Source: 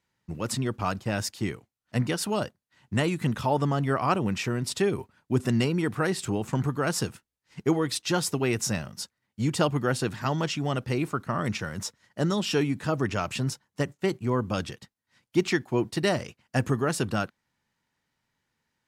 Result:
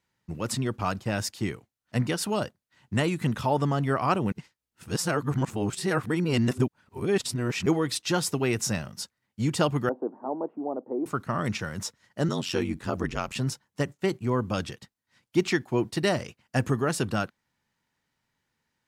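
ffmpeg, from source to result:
-filter_complex "[0:a]asettb=1/sr,asplit=3[s0][s1][s2];[s0]atrim=end=9.894[s3];[s1]atrim=start=9.89:end=11.06,asetpts=PTS-STARTPTS,afade=t=in:d=0.004:c=qsin,afade=t=out:st=1.166:d=0.004:c=qsin,asuperpass=centerf=480:order=8:qfactor=0.74[s4];[s2]atrim=start=11.056[s5];[s3][s4]acrossfade=d=0.004:c1=hsin:c2=qsin[s6];[s6][s5]acrossfade=d=0.004:c1=qsin:c2=hsin,asettb=1/sr,asplit=3[s7][s8][s9];[s7]atrim=end=12.284[s10];[s8]atrim=start=12.28:end=13.36,asetpts=PTS-STARTPTS,afade=t=in:d=0.004:c=qsin,afade=t=out:st=1.076:d=0.004:c=qsin,aeval=exprs='val(0)*sin(2*PI*45*n/s)':c=same[s11];[s9]atrim=start=13.356[s12];[s10][s11]acrossfade=d=0.004:c1=hsin:c2=qsin[s13];[s13][s12]acrossfade=d=0.004:c1=qsin:c2=hsin,asplit=3[s14][s15][s16];[s14]atrim=end=4.322[s17];[s15]atrim=start=4.318:end=7.662,asetpts=PTS-STARTPTS,areverse[s18];[s16]atrim=start=7.658[s19];[s17][s18]acrossfade=d=0.004:c1=hsin:c2=hsin[s20];[s20][s19]acrossfade=d=0.004:c1=hsin:c2=hsin"

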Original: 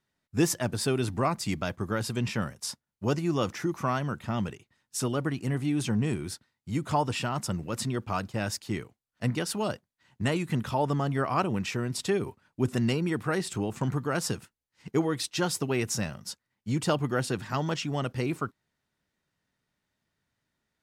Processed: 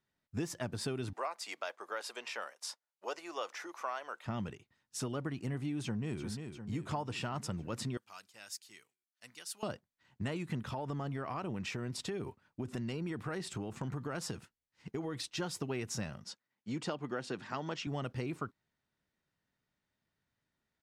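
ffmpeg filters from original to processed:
-filter_complex "[0:a]asettb=1/sr,asplit=3[s0][s1][s2];[s0]atrim=end=1.134[s3];[s1]atrim=start=1.13:end=4.26,asetpts=PTS-STARTPTS,afade=t=in:d=0.004:c=qsin,afade=t=out:st=3.126:d=0.004:c=qsin,highpass=f=510:w=0.5412,highpass=f=510:w=1.3066[s4];[s2]atrim=start=4.256[s5];[s3][s4]acrossfade=d=0.004:c1=hsin:c2=qsin[s6];[s6][s5]acrossfade=d=0.004:c1=qsin:c2=hsin,asplit=2[s7][s8];[s8]afade=t=in:st=5.82:d=0.01,afade=t=out:st=6.23:d=0.01,aecho=0:1:350|700|1050|1400|1750|2100|2450|2800:0.281838|0.183195|0.119077|0.0773998|0.0503099|0.0327014|0.0212559|0.0138164[s9];[s7][s9]amix=inputs=2:normalize=0,asettb=1/sr,asplit=3[s10][s11][s12];[s10]atrim=end=7.974[s13];[s11]atrim=start=7.97:end=9.63,asetpts=PTS-STARTPTS,afade=t=in:d=0.004:c=qsin,afade=t=out:st=1.656:d=0.004:c=qsin,aderivative[s14];[s12]atrim=start=9.626[s15];[s13][s14]acrossfade=d=0.004:c1=hsin:c2=qsin[s16];[s16][s15]acrossfade=d=0.004:c1=qsin:c2=hsin,asettb=1/sr,asplit=3[s17][s18][s19];[s17]atrim=end=10.634[s20];[s18]atrim=start=10.63:end=15.4,asetpts=PTS-STARTPTS,afade=t=in:d=0.004:c=qsin,afade=t=out:st=4.766:d=0.004:c=qsin,acompressor=threshold=0.0398:ratio=6:attack=3.2:release=140:knee=1:detection=peak[s21];[s19]atrim=start=15.396[s22];[s20][s21]acrossfade=d=0.004:c1=hsin:c2=qsin[s23];[s23][s22]acrossfade=d=0.004:c1=qsin:c2=hsin,asettb=1/sr,asplit=3[s24][s25][s26];[s24]atrim=end=16.244[s27];[s25]atrim=start=16.24:end=17.87,asetpts=PTS-STARTPTS,afade=t=in:d=0.004:c=qsin,afade=t=out:st=1.626:d=0.004:c=qsin,highpass=200,lowpass=7400[s28];[s26]atrim=start=17.866[s29];[s27][s28]acrossfade=d=0.004:c1=hsin:c2=qsin[s30];[s30][s29]acrossfade=d=0.004:c1=qsin:c2=hsin,highshelf=f=9800:g=-11.5,acompressor=threshold=0.0355:ratio=6,volume=0.596"

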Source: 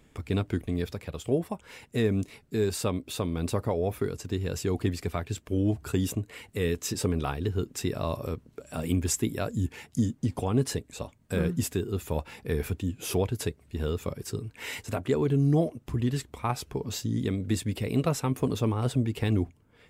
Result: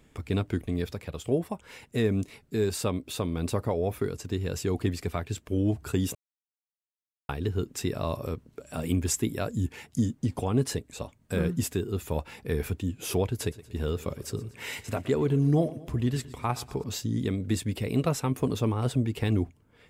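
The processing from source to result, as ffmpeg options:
-filter_complex "[0:a]asettb=1/sr,asplit=3[s0][s1][s2];[s0]atrim=end=13.264[s3];[s1]atrim=start=13.26:end=16.84,asetpts=PTS-STARTPTS,afade=t=in:d=0.004:c=qsin,afade=t=out:st=3.576:d=0.004:c=qsin,aecho=1:1:119|238|357|476|595:0.119|0.0677|0.0386|0.022|0.0125,atrim=end_sample=157878[s4];[s2]atrim=start=16.836[s5];[s3][s4]acrossfade=d=0.004:c1=hsin:c2=qsin[s6];[s6][s5]acrossfade=d=0.004:c1=qsin:c2=hsin,asplit=3[s7][s8][s9];[s7]atrim=end=6.15,asetpts=PTS-STARTPTS,afade=t=out:st=6.146:d=0.004:c=hsin[s10];[s8]atrim=start=6.15:end=7.29,asetpts=PTS-STARTPTS,volume=0[s11];[s9]atrim=start=7.29,asetpts=PTS-STARTPTS,afade=t=in:d=0.004:c=hsin[s12];[s10][s11][s12]concat=n=3:v=0:a=1"

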